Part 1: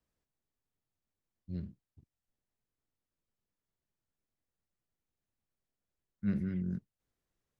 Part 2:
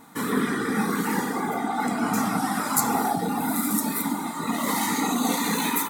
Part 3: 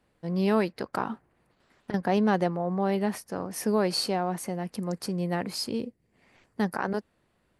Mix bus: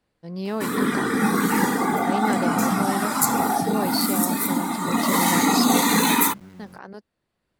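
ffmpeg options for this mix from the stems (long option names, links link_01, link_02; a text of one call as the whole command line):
ffmpeg -i stem1.wav -i stem2.wav -i stem3.wav -filter_complex "[0:a]lowshelf=frequency=170:gain=-9.5,aeval=exprs='val(0)*gte(abs(val(0)),0.00794)':channel_layout=same,volume=-10dB,asplit=2[link_01][link_02];[1:a]adelay=450,volume=0.5dB[link_03];[2:a]equalizer=frequency=4600:width=1.5:gain=4.5,volume=-4.5dB[link_04];[link_02]apad=whole_len=334976[link_05];[link_04][link_05]sidechaincompress=threshold=-57dB:ratio=4:attack=7.4:release=995[link_06];[link_01][link_03][link_06]amix=inputs=3:normalize=0,dynaudnorm=framelen=230:gausssize=11:maxgain=7dB" out.wav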